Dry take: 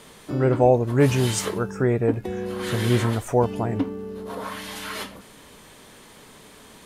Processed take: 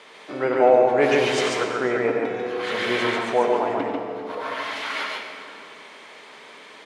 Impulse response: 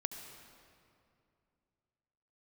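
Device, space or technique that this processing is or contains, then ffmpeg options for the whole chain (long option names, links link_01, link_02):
station announcement: -filter_complex "[0:a]highpass=470,lowpass=4200,equalizer=frequency=2200:width_type=o:width=0.37:gain=5,aecho=1:1:93.29|142.9:0.355|0.794[link_01];[1:a]atrim=start_sample=2205[link_02];[link_01][link_02]afir=irnorm=-1:irlink=0,volume=3.5dB"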